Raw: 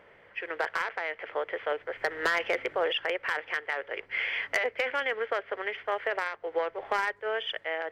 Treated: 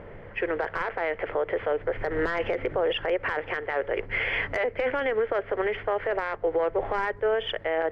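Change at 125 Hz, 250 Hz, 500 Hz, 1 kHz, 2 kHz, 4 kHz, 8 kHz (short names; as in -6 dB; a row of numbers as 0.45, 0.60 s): n/a, +10.5 dB, +6.5 dB, +2.0 dB, -0.5 dB, -1.5 dB, under -10 dB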